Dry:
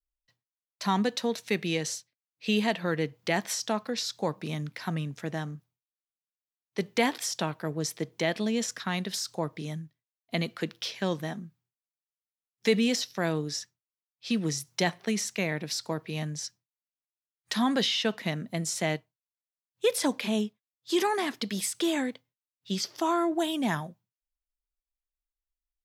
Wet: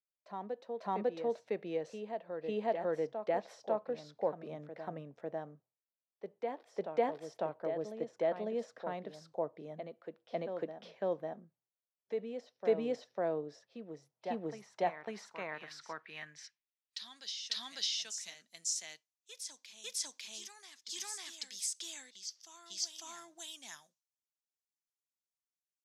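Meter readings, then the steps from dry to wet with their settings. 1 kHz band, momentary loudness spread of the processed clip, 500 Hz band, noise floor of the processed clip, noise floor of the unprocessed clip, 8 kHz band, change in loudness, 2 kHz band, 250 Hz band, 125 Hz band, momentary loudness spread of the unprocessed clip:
−7.5 dB, 13 LU, −4.5 dB, below −85 dBFS, below −85 dBFS, −7.0 dB, −9.0 dB, −15.0 dB, −15.5 dB, −18.5 dB, 10 LU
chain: band-pass filter sweep 580 Hz → 6,300 Hz, 0:14.60–0:18.05
backwards echo 549 ms −7 dB

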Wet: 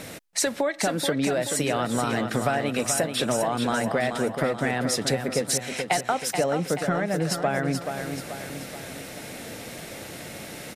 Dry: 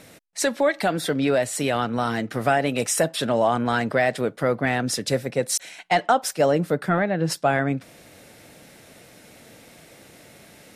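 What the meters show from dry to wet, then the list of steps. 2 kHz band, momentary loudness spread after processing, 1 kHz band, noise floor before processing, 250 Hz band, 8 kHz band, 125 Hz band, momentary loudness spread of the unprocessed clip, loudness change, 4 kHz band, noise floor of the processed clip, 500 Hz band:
−2.5 dB, 13 LU, −4.0 dB, −50 dBFS, −1.5 dB, +1.0 dB, −2.0 dB, 4 LU, −3.0 dB, +0.5 dB, −40 dBFS, −3.0 dB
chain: downward compressor 6 to 1, threshold −32 dBFS, peak gain reduction 17 dB
on a send: repeating echo 431 ms, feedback 50%, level −7 dB
on the sum: level +9 dB

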